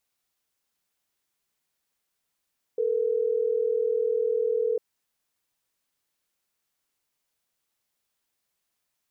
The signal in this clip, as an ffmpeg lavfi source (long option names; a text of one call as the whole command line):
ffmpeg -f lavfi -i "aevalsrc='0.0562*(sin(2*PI*440*t)+sin(2*PI*480*t))*clip(min(mod(t,6),2-mod(t,6))/0.005,0,1)':duration=3.12:sample_rate=44100" out.wav